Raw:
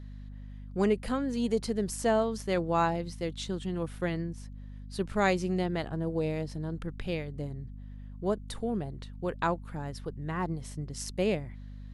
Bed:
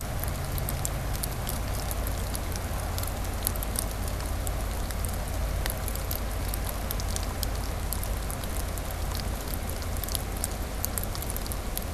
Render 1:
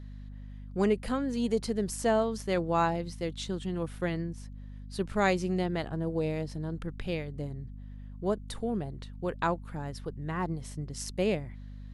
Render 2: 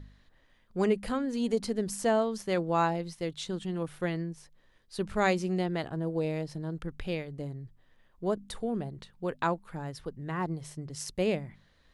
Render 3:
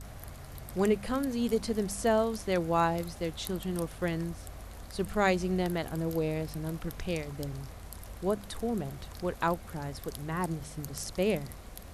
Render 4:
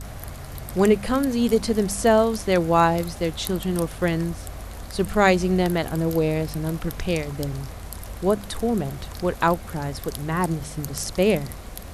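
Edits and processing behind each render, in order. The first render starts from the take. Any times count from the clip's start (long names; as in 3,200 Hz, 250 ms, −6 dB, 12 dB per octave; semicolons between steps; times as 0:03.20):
no processing that can be heard
hum removal 50 Hz, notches 5
mix in bed −14 dB
level +9 dB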